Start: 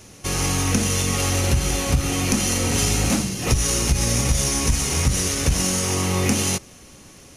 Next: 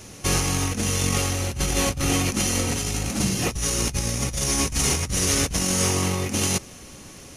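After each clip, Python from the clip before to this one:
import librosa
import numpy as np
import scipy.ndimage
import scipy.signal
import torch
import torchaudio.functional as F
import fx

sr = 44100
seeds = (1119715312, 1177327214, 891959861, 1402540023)

y = fx.over_compress(x, sr, threshold_db=-23.0, ratio=-0.5)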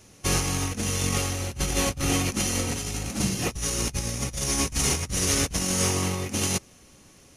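y = fx.upward_expand(x, sr, threshold_db=-38.0, expansion=1.5)
y = y * librosa.db_to_amplitude(-1.5)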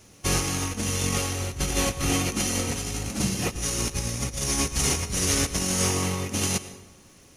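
y = fx.dmg_crackle(x, sr, seeds[0], per_s=450.0, level_db=-53.0)
y = fx.rev_plate(y, sr, seeds[1], rt60_s=1.0, hf_ratio=0.6, predelay_ms=90, drr_db=13.0)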